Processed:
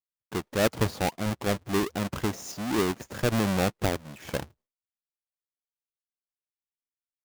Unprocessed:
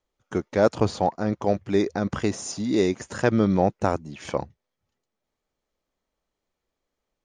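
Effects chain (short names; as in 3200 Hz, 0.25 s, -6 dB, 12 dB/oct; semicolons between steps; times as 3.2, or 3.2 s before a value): half-waves squared off; expander -45 dBFS; gain -8.5 dB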